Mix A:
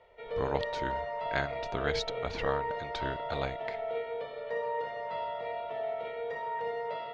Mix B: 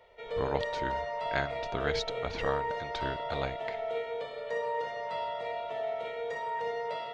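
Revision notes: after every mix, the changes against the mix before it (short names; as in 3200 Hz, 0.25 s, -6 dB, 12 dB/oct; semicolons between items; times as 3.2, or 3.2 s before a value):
background: remove air absorption 200 m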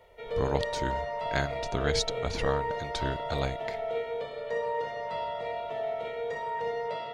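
speech: remove LPF 3300 Hz 12 dB/oct; master: add low shelf 330 Hz +7.5 dB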